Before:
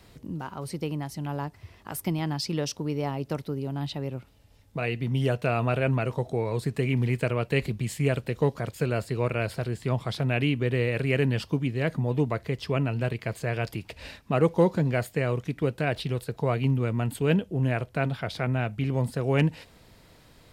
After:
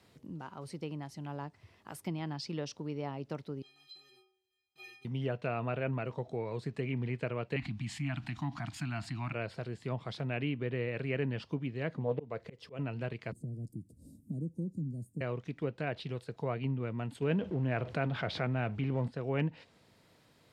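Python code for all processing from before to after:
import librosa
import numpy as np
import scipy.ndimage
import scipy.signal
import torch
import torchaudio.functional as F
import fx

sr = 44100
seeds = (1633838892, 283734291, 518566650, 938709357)

y = fx.chain(x, sr, fx.block_float(bits=3),
    fx.band_shelf(hz=3400.0, db=12.5, octaves=1.2),
    fx.stiff_resonator(f0_hz=370.0, decay_s=0.67, stiffness=0.03), at=(3.62, 5.05))
y = fx.chain(y, sr, fx.cheby1_bandstop(low_hz=300.0, high_hz=720.0, order=3),
    fx.high_shelf(hz=9500.0, db=-4.0),
    fx.env_flatten(amount_pct=50), at=(7.56, 9.33))
y = fx.chain(y, sr, fx.peak_eq(hz=480.0, db=9.5, octaves=0.41),
    fx.auto_swell(attack_ms=242.0),
    fx.doppler_dist(depth_ms=0.23), at=(11.96, 12.79))
y = fx.chain(y, sr, fx.cheby1_bandstop(low_hz=300.0, high_hz=8900.0, order=3),
    fx.peak_eq(hz=400.0, db=-6.0, octaves=0.83),
    fx.band_squash(depth_pct=70), at=(13.32, 15.21))
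y = fx.chain(y, sr, fx.law_mismatch(coded='mu'),
    fx.env_flatten(amount_pct=50), at=(17.22, 19.08))
y = scipy.signal.sosfilt(scipy.signal.butter(2, 110.0, 'highpass', fs=sr, output='sos'), y)
y = fx.env_lowpass_down(y, sr, base_hz=3000.0, full_db=-21.5)
y = fx.high_shelf(y, sr, hz=8800.0, db=-3.5)
y = F.gain(torch.from_numpy(y), -8.5).numpy()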